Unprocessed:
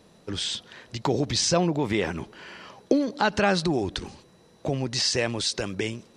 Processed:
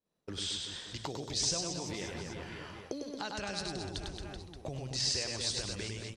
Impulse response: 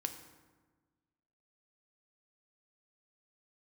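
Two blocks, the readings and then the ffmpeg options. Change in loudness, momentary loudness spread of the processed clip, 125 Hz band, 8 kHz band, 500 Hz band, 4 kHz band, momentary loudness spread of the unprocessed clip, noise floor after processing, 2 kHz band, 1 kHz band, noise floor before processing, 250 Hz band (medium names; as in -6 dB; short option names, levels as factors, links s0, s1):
-10.5 dB, 13 LU, -11.0 dB, -5.0 dB, -15.0 dB, -6.5 dB, 16 LU, -56 dBFS, -12.5 dB, -14.5 dB, -57 dBFS, -15.5 dB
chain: -filter_complex "[0:a]bandreject=f=60:t=h:w=6,bandreject=f=120:t=h:w=6,aecho=1:1:100|225|381.2|576.6|820.7:0.631|0.398|0.251|0.158|0.1,agate=range=0.0224:threshold=0.01:ratio=3:detection=peak,asubboost=boost=5:cutoff=100,acrossover=split=4000[s0][s1];[s0]acompressor=threshold=0.0282:ratio=6[s2];[s2][s1]amix=inputs=2:normalize=0,volume=0.473"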